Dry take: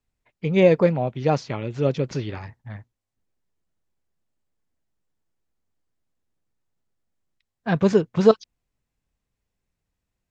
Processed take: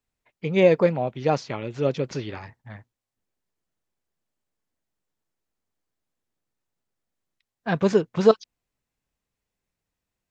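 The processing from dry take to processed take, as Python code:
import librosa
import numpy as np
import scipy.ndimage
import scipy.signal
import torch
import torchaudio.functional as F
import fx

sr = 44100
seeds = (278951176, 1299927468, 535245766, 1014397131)

y = fx.low_shelf(x, sr, hz=170.0, db=-8.0)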